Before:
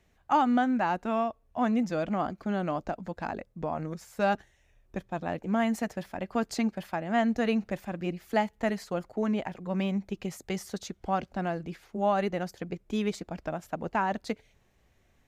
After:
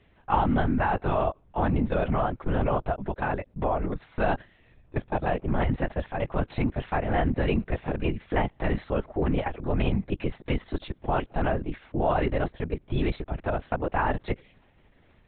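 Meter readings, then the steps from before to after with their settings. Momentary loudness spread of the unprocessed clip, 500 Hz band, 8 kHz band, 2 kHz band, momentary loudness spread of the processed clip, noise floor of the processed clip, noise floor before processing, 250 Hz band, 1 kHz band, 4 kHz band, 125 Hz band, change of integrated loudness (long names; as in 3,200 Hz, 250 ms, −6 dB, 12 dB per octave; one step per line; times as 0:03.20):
10 LU, +3.0 dB, below −30 dB, +2.5 dB, 7 LU, −60 dBFS, −67 dBFS, 0.0 dB, +1.5 dB, 0.0 dB, +9.5 dB, +2.5 dB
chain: in parallel at −1.5 dB: compressor whose output falls as the input rises −30 dBFS, ratio −0.5
on the sum: linear-prediction vocoder at 8 kHz whisper
high-frequency loss of the air 63 metres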